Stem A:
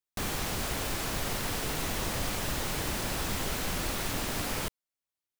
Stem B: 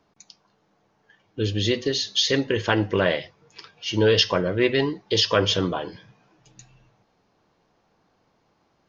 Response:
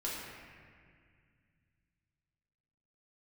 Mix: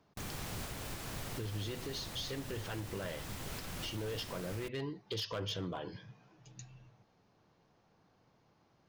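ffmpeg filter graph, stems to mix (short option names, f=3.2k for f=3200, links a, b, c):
-filter_complex "[0:a]volume=-9dB[a];[1:a]acompressor=threshold=-31dB:ratio=2,asoftclip=type=hard:threshold=-23dB,volume=-5dB[b];[a][b]amix=inputs=2:normalize=0,equalizer=f=120:t=o:w=1.1:g=6.5,alimiter=level_in=7dB:limit=-24dB:level=0:latency=1:release=390,volume=-7dB"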